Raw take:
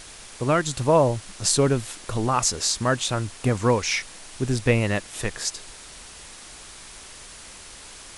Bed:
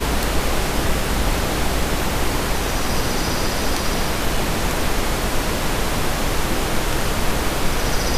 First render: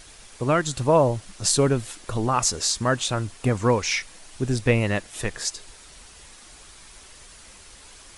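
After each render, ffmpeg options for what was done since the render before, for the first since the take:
ffmpeg -i in.wav -af "afftdn=noise_reduction=6:noise_floor=-43" out.wav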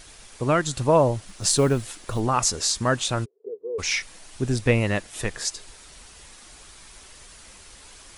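ffmpeg -i in.wav -filter_complex "[0:a]asettb=1/sr,asplit=3[link_01][link_02][link_03];[link_01]atrim=end=1.274[link_04];[link_02]atrim=start=1.27:end=2.2,asetpts=PTS-STARTPTS,afade=type=in:duration=0.004:curve=qsin,afade=type=out:start_time=0.926:duration=0.004:curve=qsin,acrusher=bits=8:mode=log:mix=0:aa=0.000001[link_05];[link_03]atrim=start=2.196[link_06];[link_04][link_05]acrossfade=duration=0.004:curve1=hsin:curve2=qsin[link_07];[link_07][link_06]acrossfade=duration=0.004:curve1=qsin:curve2=hsin,asplit=3[link_08][link_09][link_10];[link_08]afade=type=out:start_time=3.24:duration=0.02[link_11];[link_09]asuperpass=centerf=430:order=4:qfactor=6.2,afade=type=in:start_time=3.24:duration=0.02,afade=type=out:start_time=3.78:duration=0.02[link_12];[link_10]afade=type=in:start_time=3.78:duration=0.02[link_13];[link_11][link_12][link_13]amix=inputs=3:normalize=0" out.wav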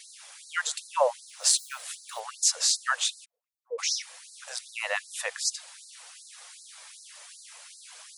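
ffmpeg -i in.wav -af "afftfilt=real='re*gte(b*sr/1024,450*pow(4000/450,0.5+0.5*sin(2*PI*2.6*pts/sr)))':imag='im*gte(b*sr/1024,450*pow(4000/450,0.5+0.5*sin(2*PI*2.6*pts/sr)))':win_size=1024:overlap=0.75" out.wav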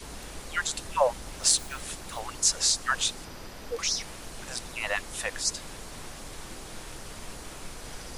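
ffmpeg -i in.wav -i bed.wav -filter_complex "[1:a]volume=-22dB[link_01];[0:a][link_01]amix=inputs=2:normalize=0" out.wav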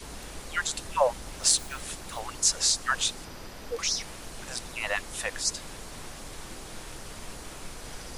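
ffmpeg -i in.wav -af anull out.wav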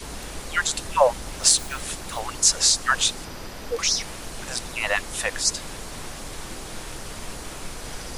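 ffmpeg -i in.wav -af "volume=6dB,alimiter=limit=-1dB:level=0:latency=1" out.wav

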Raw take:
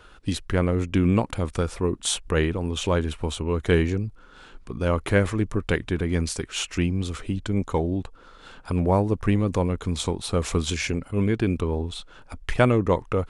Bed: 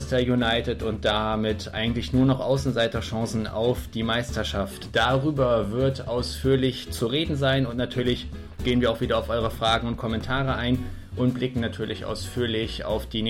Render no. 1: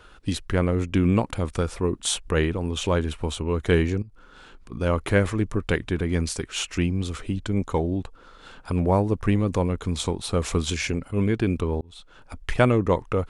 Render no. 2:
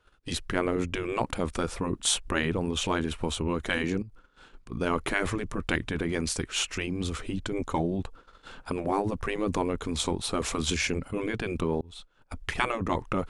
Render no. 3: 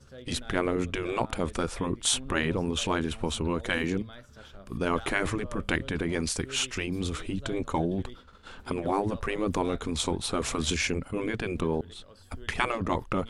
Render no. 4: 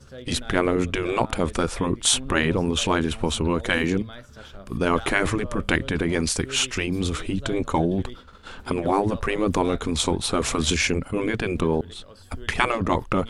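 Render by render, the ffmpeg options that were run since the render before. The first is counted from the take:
ffmpeg -i in.wav -filter_complex "[0:a]asettb=1/sr,asplit=3[link_01][link_02][link_03];[link_01]atrim=end=4.024[link_04];[link_02]atrim=start=4.02:end=4.72,asetpts=PTS-STARTPTS,afade=type=in:duration=0.004:curve=qsin,afade=type=out:start_time=0.696:duration=0.004:curve=qsin,acompressor=threshold=-42dB:ratio=5:attack=3.2:release=140:knee=1:detection=peak[link_05];[link_03]atrim=start=4.716[link_06];[link_04][link_05]acrossfade=duration=0.004:curve1=hsin:curve2=qsin[link_07];[link_07][link_06]acrossfade=duration=0.004:curve1=qsin:curve2=hsin,asplit=2[link_08][link_09];[link_08]atrim=end=11.81,asetpts=PTS-STARTPTS,afade=type=out:start_time=11.806:duration=0.004:curve=hsin[link_10];[link_09]atrim=start=11.81,asetpts=PTS-STARTPTS,afade=type=in:duration=0.67:curve=qsin[link_11];[link_10][link_11]concat=n=2:v=0:a=1" out.wav
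ffmpeg -i in.wav -af "afftfilt=real='re*lt(hypot(re,im),0.398)':imag='im*lt(hypot(re,im),0.398)':win_size=1024:overlap=0.75,agate=range=-18dB:threshold=-46dB:ratio=16:detection=peak" out.wav
ffmpeg -i in.wav -i bed.wav -filter_complex "[1:a]volume=-23.5dB[link_01];[0:a][link_01]amix=inputs=2:normalize=0" out.wav
ffmpeg -i in.wav -af "volume=6dB" out.wav

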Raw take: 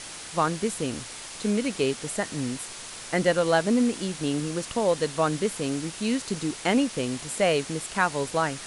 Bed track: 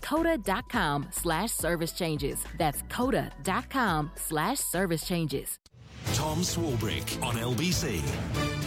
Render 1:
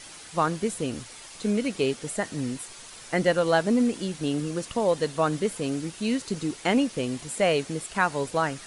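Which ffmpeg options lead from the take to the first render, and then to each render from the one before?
ffmpeg -i in.wav -af "afftdn=noise_reduction=7:noise_floor=-40" out.wav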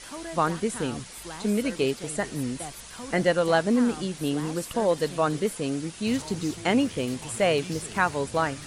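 ffmpeg -i in.wav -i bed.wav -filter_complex "[1:a]volume=-12dB[link_01];[0:a][link_01]amix=inputs=2:normalize=0" out.wav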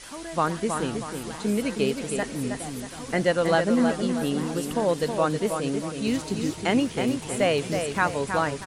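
ffmpeg -i in.wav -filter_complex "[0:a]asplit=2[link_01][link_02];[link_02]adelay=319,lowpass=frequency=3600:poles=1,volume=-6dB,asplit=2[link_03][link_04];[link_04]adelay=319,lowpass=frequency=3600:poles=1,volume=0.43,asplit=2[link_05][link_06];[link_06]adelay=319,lowpass=frequency=3600:poles=1,volume=0.43,asplit=2[link_07][link_08];[link_08]adelay=319,lowpass=frequency=3600:poles=1,volume=0.43,asplit=2[link_09][link_10];[link_10]adelay=319,lowpass=frequency=3600:poles=1,volume=0.43[link_11];[link_01][link_03][link_05][link_07][link_09][link_11]amix=inputs=6:normalize=0" out.wav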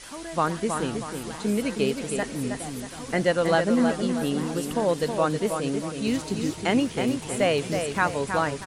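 ffmpeg -i in.wav -af anull out.wav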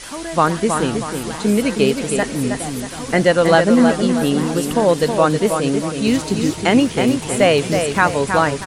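ffmpeg -i in.wav -af "volume=9dB,alimiter=limit=-1dB:level=0:latency=1" out.wav

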